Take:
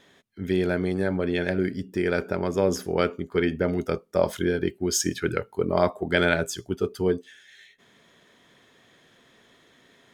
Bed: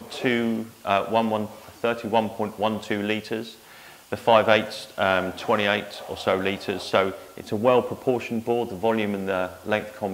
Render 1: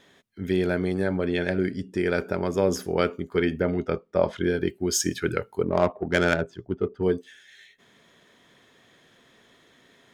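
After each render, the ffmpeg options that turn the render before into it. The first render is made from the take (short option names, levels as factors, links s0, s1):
-filter_complex "[0:a]asettb=1/sr,asplit=3[s0][s1][s2];[s0]atrim=end=1.054[s3];[s1]atrim=start=1.05:end=2,asetpts=PTS-STARTPTS,afade=t=in:d=0.004:c=qsin,afade=t=out:st=0.946:d=0.004:c=qsin,lowpass=f=11000:w=0.5412,lowpass=f=11000:w=1.3066[s4];[s2]atrim=start=1.996[s5];[s3][s4]acrossfade=d=0.004:c1=hsin:c2=qsin[s6];[s6][s5]acrossfade=d=0.004:c1=qsin:c2=hsin,asettb=1/sr,asplit=3[s7][s8][s9];[s7]atrim=end=3.624[s10];[s8]atrim=start=3.62:end=4.44,asetpts=PTS-STARTPTS,afade=t=in:d=0.004:c=qsin,afade=t=out:st=0.816:d=0.004:c=qsin,lowpass=3400[s11];[s9]atrim=start=4.436[s12];[s10][s11]acrossfade=d=0.004:c1=hsin:c2=qsin[s13];[s13][s12]acrossfade=d=0.004:c1=qsin:c2=hsin,asettb=1/sr,asplit=3[s14][s15][s16];[s14]atrim=end=5.634[s17];[s15]atrim=start=5.63:end=7.03,asetpts=PTS-STARTPTS,afade=t=in:d=0.004:c=qsin,afade=t=out:st=1.396:d=0.004:c=qsin,adynamicsmooth=sensitivity=1:basefreq=1200[s18];[s16]atrim=start=7.026[s19];[s17][s18]acrossfade=d=0.004:c1=hsin:c2=qsin[s20];[s20][s19]acrossfade=d=0.004:c1=qsin:c2=hsin"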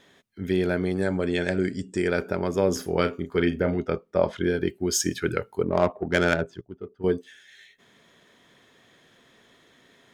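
-filter_complex "[0:a]asettb=1/sr,asplit=3[s0][s1][s2];[s0]atrim=end=1.024[s3];[s1]atrim=start=1.02:end=2.08,asetpts=PTS-STARTPTS,afade=t=in:d=0.004:c=qsin,afade=t=out:st=1.056:d=0.004:c=qsin,lowpass=f=7800:t=q:w=7.2[s4];[s2]atrim=start=2.076[s5];[s3][s4]acrossfade=d=0.004:c1=hsin:c2=qsin[s6];[s6][s5]acrossfade=d=0.004:c1=qsin:c2=hsin,asettb=1/sr,asplit=3[s7][s8][s9];[s7]atrim=end=2.724[s10];[s8]atrim=start=2.72:end=3.75,asetpts=PTS-STARTPTS,afade=t=in:d=0.004:c=qsin,afade=t=out:st=1.026:d=0.004:c=qsin,asplit=2[s11][s12];[s12]adelay=35,volume=0.355[s13];[s11][s13]amix=inputs=2:normalize=0,atrim=end_sample=45423[s14];[s9]atrim=start=3.746[s15];[s10][s14]acrossfade=d=0.004:c1=hsin:c2=qsin[s16];[s16][s15]acrossfade=d=0.004:c1=qsin:c2=hsin,asplit=3[s17][s18][s19];[s17]atrim=end=6.612[s20];[s18]atrim=start=6.608:end=7.042,asetpts=PTS-STARTPTS,volume=0.266[s21];[s19]atrim=start=7.038[s22];[s20][s21]acrossfade=d=0.004:c1=hsin:c2=hsin[s23];[s23][s22]acrossfade=d=0.004:c1=hsin:c2=hsin"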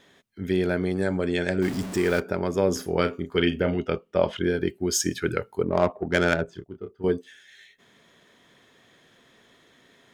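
-filter_complex "[0:a]asettb=1/sr,asplit=3[s0][s1][s2];[s0]atrim=end=1.624[s3];[s1]atrim=start=1.62:end=2.2,asetpts=PTS-STARTPTS,afade=t=in:d=0.004:c=qsin,afade=t=out:st=0.576:d=0.004:c=qsin,aeval=exprs='val(0)+0.5*0.0316*sgn(val(0))':c=same[s4];[s2]atrim=start=2.196[s5];[s3][s4]acrossfade=d=0.004:c1=hsin:c2=qsin[s6];[s6][s5]acrossfade=d=0.004:c1=qsin:c2=hsin,asettb=1/sr,asplit=3[s7][s8][s9];[s7]atrim=end=3.364[s10];[s8]atrim=start=3.36:end=4.39,asetpts=PTS-STARTPTS,afade=t=in:d=0.004:c=qsin,afade=t=out:st=1.026:d=0.004:c=qsin,equalizer=f=2900:w=4.3:g=14[s11];[s9]atrim=start=4.386[s12];[s10][s11]acrossfade=d=0.004:c1=hsin:c2=qsin[s13];[s13][s12]acrossfade=d=0.004:c1=qsin:c2=hsin,asettb=1/sr,asplit=3[s14][s15][s16];[s14]atrim=end=6.454[s17];[s15]atrim=start=6.45:end=7.09,asetpts=PTS-STARTPTS,afade=t=in:d=0.004:c=qsin,afade=t=out:st=0.636:d=0.004:c=qsin,asplit=2[s18][s19];[s19]adelay=29,volume=0.422[s20];[s18][s20]amix=inputs=2:normalize=0,atrim=end_sample=28224[s21];[s16]atrim=start=7.086[s22];[s17][s21]acrossfade=d=0.004:c1=hsin:c2=qsin[s23];[s23][s22]acrossfade=d=0.004:c1=qsin:c2=hsin"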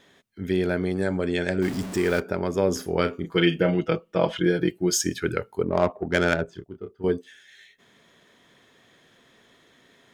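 -filter_complex "[0:a]asettb=1/sr,asplit=3[s0][s1][s2];[s0]atrim=end=3.234[s3];[s1]atrim=start=3.23:end=4.95,asetpts=PTS-STARTPTS,afade=t=in:d=0.004:c=qsin,afade=t=out:st=1.716:d=0.004:c=qsin,aecho=1:1:6.1:0.89,atrim=end_sample=75852[s4];[s2]atrim=start=4.946[s5];[s3][s4]acrossfade=d=0.004:c1=hsin:c2=qsin[s6];[s6][s5]acrossfade=d=0.004:c1=qsin:c2=hsin"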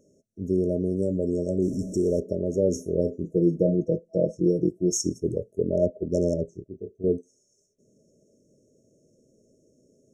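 -af "afftfilt=real='re*(1-between(b*sr/4096,650,5400))':imag='im*(1-between(b*sr/4096,650,5400))':win_size=4096:overlap=0.75,lowpass=7200"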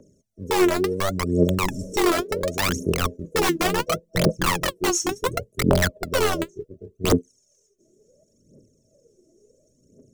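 -filter_complex "[0:a]acrossover=split=180|790|1800[s0][s1][s2][s3];[s1]aeval=exprs='(mod(8.91*val(0)+1,2)-1)/8.91':c=same[s4];[s0][s4][s2][s3]amix=inputs=4:normalize=0,aphaser=in_gain=1:out_gain=1:delay=3.1:decay=0.79:speed=0.7:type=triangular"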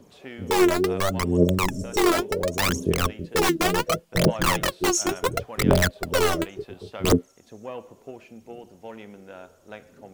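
-filter_complex "[1:a]volume=0.133[s0];[0:a][s0]amix=inputs=2:normalize=0"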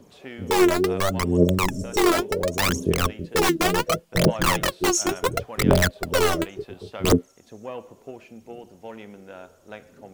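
-af "volume=1.12"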